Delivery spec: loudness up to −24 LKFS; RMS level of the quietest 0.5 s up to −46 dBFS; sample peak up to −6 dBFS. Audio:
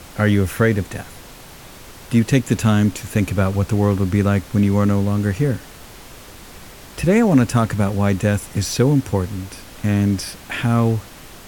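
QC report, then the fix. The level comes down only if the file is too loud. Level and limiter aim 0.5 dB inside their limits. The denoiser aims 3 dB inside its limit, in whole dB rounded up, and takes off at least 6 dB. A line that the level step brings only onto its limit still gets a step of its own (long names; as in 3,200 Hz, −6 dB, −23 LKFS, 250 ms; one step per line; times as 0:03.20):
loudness −19.0 LKFS: out of spec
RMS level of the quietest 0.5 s −40 dBFS: out of spec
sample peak −3.0 dBFS: out of spec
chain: broadband denoise 6 dB, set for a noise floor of −40 dBFS
level −5.5 dB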